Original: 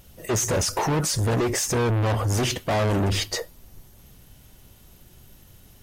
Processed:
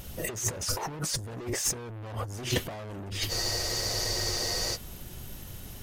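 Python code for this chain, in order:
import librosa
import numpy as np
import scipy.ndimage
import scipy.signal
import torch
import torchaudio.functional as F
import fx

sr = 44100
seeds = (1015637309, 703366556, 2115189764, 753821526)

y = fx.over_compress(x, sr, threshold_db=-30.0, ratio=-0.5)
y = 10.0 ** (-18.5 / 20.0) * np.tanh(y / 10.0 ** (-18.5 / 20.0))
y = fx.spec_freeze(y, sr, seeds[0], at_s=3.31, hold_s=1.44)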